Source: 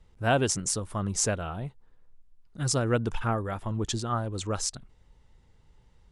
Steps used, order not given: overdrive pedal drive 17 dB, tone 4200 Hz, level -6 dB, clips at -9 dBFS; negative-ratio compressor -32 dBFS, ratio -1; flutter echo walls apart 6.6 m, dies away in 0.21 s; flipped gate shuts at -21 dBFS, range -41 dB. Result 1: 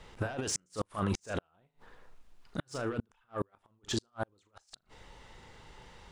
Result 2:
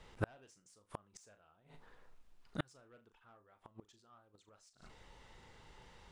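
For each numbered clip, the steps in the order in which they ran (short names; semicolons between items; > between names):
overdrive pedal > negative-ratio compressor > flutter echo > flipped gate; flutter echo > overdrive pedal > flipped gate > negative-ratio compressor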